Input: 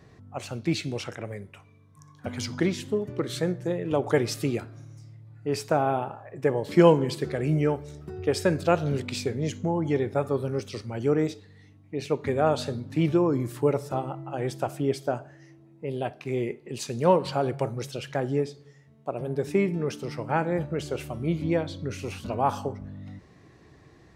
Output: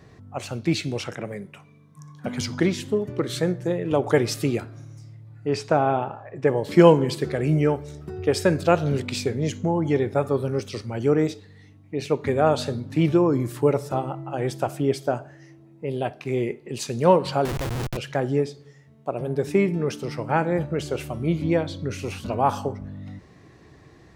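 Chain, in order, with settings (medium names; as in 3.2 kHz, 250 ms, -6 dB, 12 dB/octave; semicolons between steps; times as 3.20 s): 1.12–2.41 s: resonant low shelf 110 Hz -9 dB, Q 3; 5.49–6.48 s: low-pass 6 kHz 12 dB/octave; 17.45–17.97 s: Schmitt trigger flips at -34 dBFS; trim +3.5 dB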